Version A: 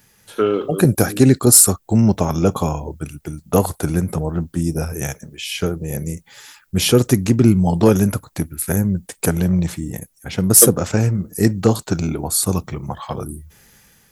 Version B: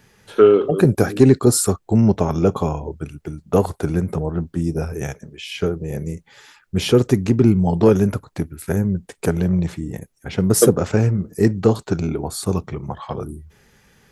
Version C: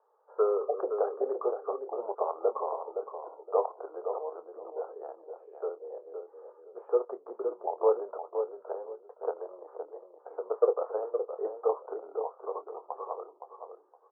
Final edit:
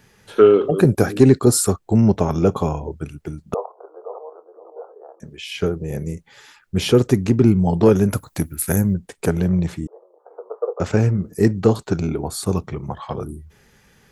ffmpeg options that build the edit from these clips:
-filter_complex "[2:a]asplit=2[a][b];[1:a]asplit=4[c][d][e][f];[c]atrim=end=3.542[g];[a]atrim=start=3.538:end=5.202[h];[d]atrim=start=5.198:end=8.122[i];[0:a]atrim=start=8.118:end=8.942[j];[e]atrim=start=8.938:end=9.872[k];[b]atrim=start=9.868:end=10.802[l];[f]atrim=start=10.798[m];[g][h]acrossfade=d=0.004:c1=hsin:c2=hsin[n];[n][i]acrossfade=d=0.004:c1=hsin:c2=hsin[o];[o][j]acrossfade=d=0.004:c1=hsin:c2=hsin[p];[p][k]acrossfade=d=0.004:c1=hsin:c2=hsin[q];[q][l]acrossfade=d=0.004:c1=hsin:c2=hsin[r];[r][m]acrossfade=d=0.004:c1=hsin:c2=hsin"

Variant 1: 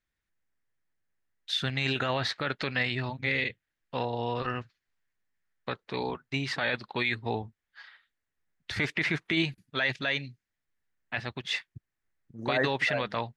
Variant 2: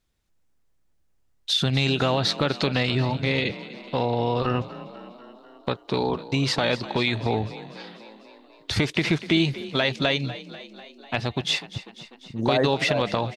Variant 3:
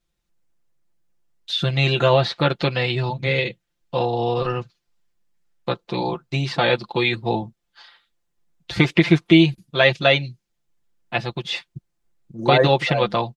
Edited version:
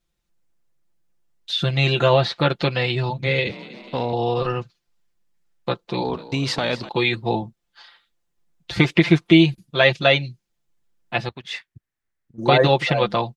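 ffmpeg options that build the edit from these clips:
-filter_complex "[1:a]asplit=2[a][b];[2:a]asplit=4[c][d][e][f];[c]atrim=end=3.472[g];[a]atrim=start=3.468:end=4.132[h];[d]atrim=start=4.128:end=6.042[i];[b]atrim=start=6.038:end=6.892[j];[e]atrim=start=6.888:end=11.292[k];[0:a]atrim=start=11.288:end=12.382[l];[f]atrim=start=12.378[m];[g][h]acrossfade=d=0.004:c1=hsin:c2=hsin[n];[n][i]acrossfade=d=0.004:c1=hsin:c2=hsin[o];[o][j]acrossfade=d=0.004:c1=hsin:c2=hsin[p];[p][k]acrossfade=d=0.004:c1=hsin:c2=hsin[q];[q][l]acrossfade=d=0.004:c1=hsin:c2=hsin[r];[r][m]acrossfade=d=0.004:c1=hsin:c2=hsin"

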